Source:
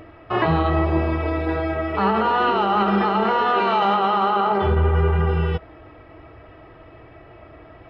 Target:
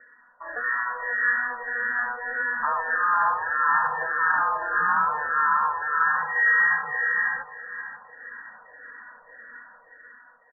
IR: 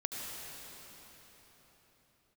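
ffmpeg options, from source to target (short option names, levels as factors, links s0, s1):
-filter_complex "[0:a]dynaudnorm=f=170:g=9:m=3.35,lowpass=f=2200:t=q:w=0.5098,lowpass=f=2200:t=q:w=0.6013,lowpass=f=2200:t=q:w=0.9,lowpass=f=2200:t=q:w=2.563,afreqshift=-2600,asplit=2[s0][s1];[s1]aecho=0:1:398|796|1194|1592|1990:0.266|0.122|0.0563|0.0259|0.0119[s2];[s0][s2]amix=inputs=2:normalize=0,asetrate=33075,aresample=44100,asplit=2[s3][s4];[s4]afreqshift=-1.7[s5];[s3][s5]amix=inputs=2:normalize=1,volume=0.355"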